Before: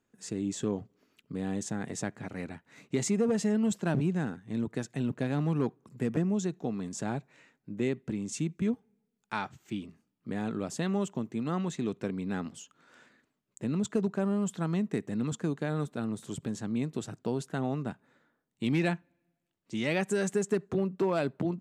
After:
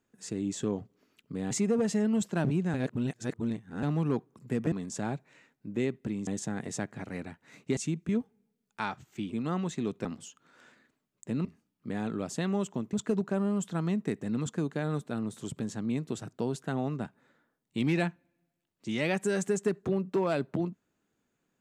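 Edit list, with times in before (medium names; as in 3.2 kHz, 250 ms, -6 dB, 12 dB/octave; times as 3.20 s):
1.51–3.01 s: move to 8.30 s
4.24–5.33 s: reverse
6.22–6.75 s: delete
9.86–11.34 s: move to 13.79 s
12.06–12.39 s: delete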